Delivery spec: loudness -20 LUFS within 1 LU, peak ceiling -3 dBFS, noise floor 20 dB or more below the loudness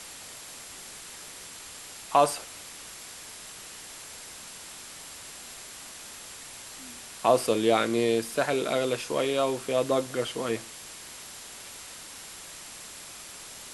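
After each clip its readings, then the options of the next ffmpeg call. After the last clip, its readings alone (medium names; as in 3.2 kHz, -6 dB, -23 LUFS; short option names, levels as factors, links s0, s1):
steady tone 7.5 kHz; tone level -53 dBFS; noise floor -44 dBFS; noise floor target -51 dBFS; loudness -31.0 LUFS; peak level -8.5 dBFS; loudness target -20.0 LUFS
-> -af "bandreject=f=7500:w=30"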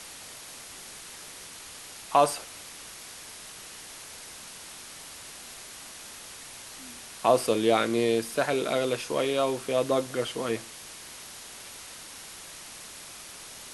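steady tone not found; noise floor -45 dBFS; noise floor target -47 dBFS
-> -af "afftdn=nr=6:nf=-45"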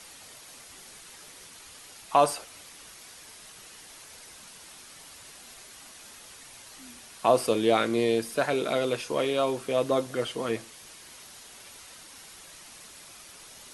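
noise floor -49 dBFS; loudness -26.5 LUFS; peak level -8.5 dBFS; loudness target -20.0 LUFS
-> -af "volume=2.11,alimiter=limit=0.708:level=0:latency=1"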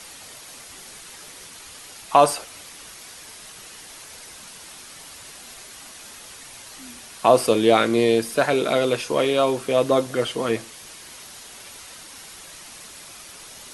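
loudness -20.0 LUFS; peak level -3.0 dBFS; noise floor -42 dBFS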